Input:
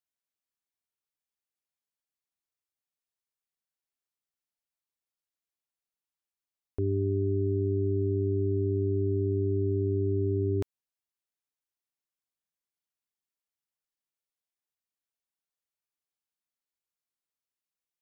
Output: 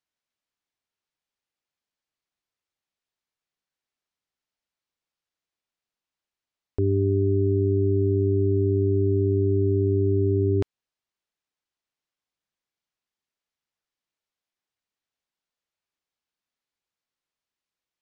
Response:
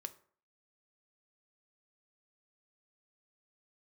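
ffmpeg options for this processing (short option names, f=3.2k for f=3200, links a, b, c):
-af "lowpass=5.5k,volume=6dB"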